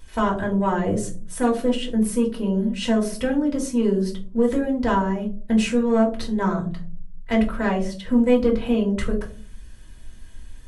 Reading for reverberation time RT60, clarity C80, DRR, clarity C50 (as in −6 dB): 0.40 s, 15.0 dB, −1.5 dB, 10.0 dB